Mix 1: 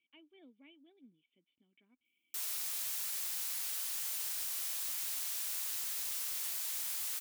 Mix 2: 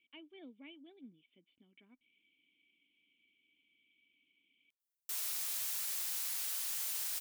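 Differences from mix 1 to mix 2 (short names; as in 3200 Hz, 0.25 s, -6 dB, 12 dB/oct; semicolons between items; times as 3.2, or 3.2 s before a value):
speech +6.5 dB; background: entry +2.75 s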